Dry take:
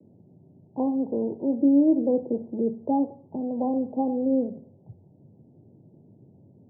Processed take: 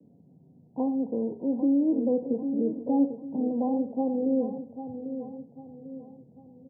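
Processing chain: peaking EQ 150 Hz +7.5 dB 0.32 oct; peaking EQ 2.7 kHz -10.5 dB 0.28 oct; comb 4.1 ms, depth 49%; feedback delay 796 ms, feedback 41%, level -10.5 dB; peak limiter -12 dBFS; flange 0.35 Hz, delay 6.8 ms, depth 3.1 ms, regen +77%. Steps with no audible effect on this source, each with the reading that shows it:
peaking EQ 2.7 kHz: input has nothing above 850 Hz

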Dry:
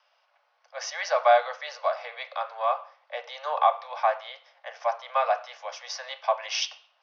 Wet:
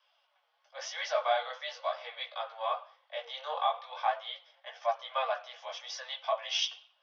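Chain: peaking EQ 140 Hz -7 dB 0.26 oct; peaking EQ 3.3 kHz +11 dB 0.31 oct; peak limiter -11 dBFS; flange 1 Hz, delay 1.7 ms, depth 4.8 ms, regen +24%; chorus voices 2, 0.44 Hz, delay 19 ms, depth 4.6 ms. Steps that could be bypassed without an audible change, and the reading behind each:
peaking EQ 140 Hz: input has nothing below 430 Hz

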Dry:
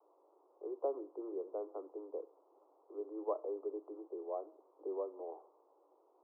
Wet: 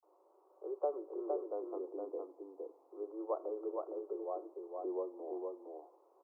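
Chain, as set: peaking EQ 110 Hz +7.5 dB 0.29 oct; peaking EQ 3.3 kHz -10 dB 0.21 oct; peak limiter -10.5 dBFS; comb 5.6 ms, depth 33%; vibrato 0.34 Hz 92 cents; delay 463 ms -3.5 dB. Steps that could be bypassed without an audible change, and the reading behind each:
peaking EQ 110 Hz: input has nothing below 270 Hz; peaking EQ 3.3 kHz: input has nothing above 1.2 kHz; peak limiter -10.5 dBFS: peak at its input -24.5 dBFS

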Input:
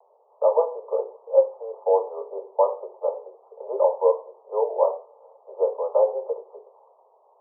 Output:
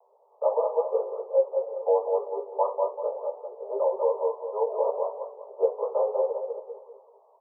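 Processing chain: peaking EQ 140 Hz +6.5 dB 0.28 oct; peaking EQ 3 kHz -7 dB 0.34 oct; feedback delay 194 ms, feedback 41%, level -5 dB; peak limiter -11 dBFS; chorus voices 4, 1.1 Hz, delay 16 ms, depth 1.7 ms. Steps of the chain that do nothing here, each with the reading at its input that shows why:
peaking EQ 140 Hz: input has nothing below 360 Hz; peaking EQ 3 kHz: input has nothing above 1.2 kHz

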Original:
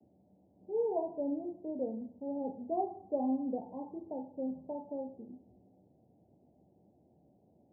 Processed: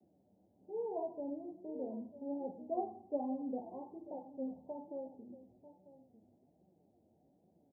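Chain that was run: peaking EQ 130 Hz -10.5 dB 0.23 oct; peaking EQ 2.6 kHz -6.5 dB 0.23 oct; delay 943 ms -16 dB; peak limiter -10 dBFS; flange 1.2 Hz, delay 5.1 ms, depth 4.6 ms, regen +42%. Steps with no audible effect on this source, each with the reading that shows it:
peaking EQ 2.6 kHz: input has nothing above 910 Hz; peak limiter -10 dBFS: peak at its input -22.5 dBFS

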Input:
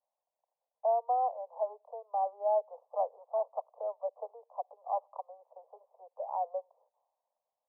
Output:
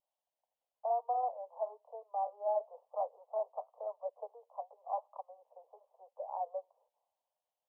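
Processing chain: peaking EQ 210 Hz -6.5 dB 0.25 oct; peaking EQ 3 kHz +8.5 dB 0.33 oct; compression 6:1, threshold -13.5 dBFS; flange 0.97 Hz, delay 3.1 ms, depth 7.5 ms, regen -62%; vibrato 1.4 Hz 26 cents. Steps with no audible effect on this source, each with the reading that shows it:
peaking EQ 210 Hz: input has nothing below 400 Hz; peaking EQ 3 kHz: input has nothing above 1.1 kHz; compression, threshold -13.5 dBFS: peak at its input -20.0 dBFS

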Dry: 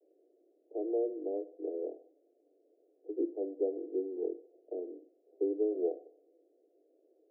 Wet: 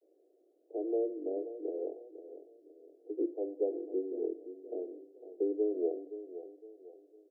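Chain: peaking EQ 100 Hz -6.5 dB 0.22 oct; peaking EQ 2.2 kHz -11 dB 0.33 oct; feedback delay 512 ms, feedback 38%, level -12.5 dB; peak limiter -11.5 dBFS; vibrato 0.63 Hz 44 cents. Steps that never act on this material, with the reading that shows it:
peaking EQ 100 Hz: input has nothing below 250 Hz; peaking EQ 2.2 kHz: input has nothing above 760 Hz; peak limiter -11.5 dBFS: peak at its input -20.0 dBFS

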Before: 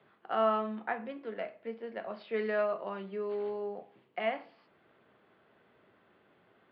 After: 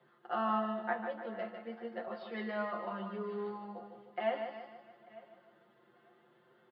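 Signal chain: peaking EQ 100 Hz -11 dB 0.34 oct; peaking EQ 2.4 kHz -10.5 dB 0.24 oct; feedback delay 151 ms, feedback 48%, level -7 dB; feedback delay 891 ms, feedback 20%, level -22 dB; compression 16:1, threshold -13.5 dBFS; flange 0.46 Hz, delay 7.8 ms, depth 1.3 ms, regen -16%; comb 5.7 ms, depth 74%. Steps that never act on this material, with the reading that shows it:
compression, threshold -13.5 dBFS: peak at its input -16.5 dBFS

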